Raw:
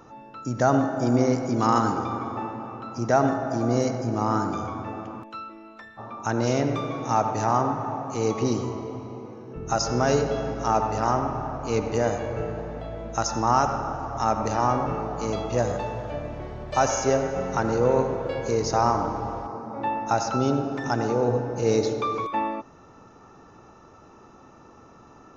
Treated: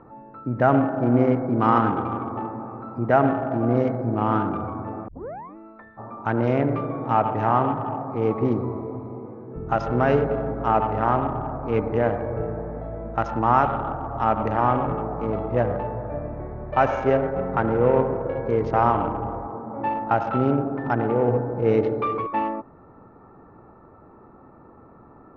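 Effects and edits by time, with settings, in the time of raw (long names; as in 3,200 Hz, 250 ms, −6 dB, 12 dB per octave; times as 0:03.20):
0:05.08: tape start 0.48 s
whole clip: adaptive Wiener filter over 15 samples; Chebyshev low-pass filter 2,700 Hz, order 3; dynamic equaliser 1,800 Hz, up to +3 dB, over −37 dBFS, Q 1.1; level +2.5 dB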